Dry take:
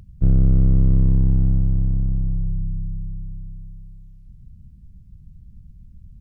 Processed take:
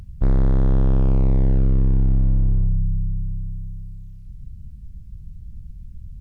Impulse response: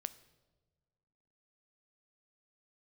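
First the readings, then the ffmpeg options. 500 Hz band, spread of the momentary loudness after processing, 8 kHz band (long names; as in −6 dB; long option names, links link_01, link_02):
+7.5 dB, 21 LU, can't be measured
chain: -filter_complex "[0:a]equalizer=frequency=250:width=0.57:gain=-6.5,volume=21.5dB,asoftclip=hard,volume=-21.5dB,asplit=2[link_01][link_02];[1:a]atrim=start_sample=2205,asetrate=30429,aresample=44100[link_03];[link_02][link_03]afir=irnorm=-1:irlink=0,volume=-3dB[link_04];[link_01][link_04]amix=inputs=2:normalize=0,volume=3.5dB"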